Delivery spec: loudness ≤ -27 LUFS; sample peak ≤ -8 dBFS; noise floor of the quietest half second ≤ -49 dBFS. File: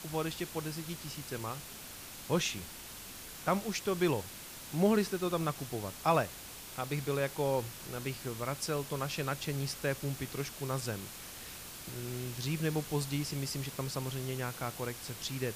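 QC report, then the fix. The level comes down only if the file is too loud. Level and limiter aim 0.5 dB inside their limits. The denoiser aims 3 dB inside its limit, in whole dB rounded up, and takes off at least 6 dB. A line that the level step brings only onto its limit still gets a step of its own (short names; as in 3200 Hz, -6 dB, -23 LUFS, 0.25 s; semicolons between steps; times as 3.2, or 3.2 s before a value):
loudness -35.5 LUFS: OK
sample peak -16.0 dBFS: OK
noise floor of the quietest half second -47 dBFS: fail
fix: denoiser 6 dB, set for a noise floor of -47 dBFS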